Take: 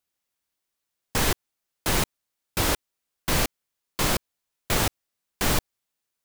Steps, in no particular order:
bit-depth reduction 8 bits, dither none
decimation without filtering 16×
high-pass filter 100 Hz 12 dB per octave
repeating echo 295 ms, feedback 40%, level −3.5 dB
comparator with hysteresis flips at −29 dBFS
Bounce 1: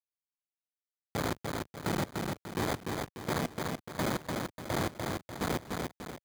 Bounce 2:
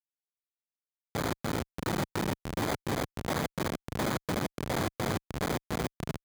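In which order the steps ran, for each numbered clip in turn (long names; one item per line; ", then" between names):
decimation without filtering, then comparator with hysteresis, then repeating echo, then bit-depth reduction, then high-pass filter
decimation without filtering, then repeating echo, then bit-depth reduction, then comparator with hysteresis, then high-pass filter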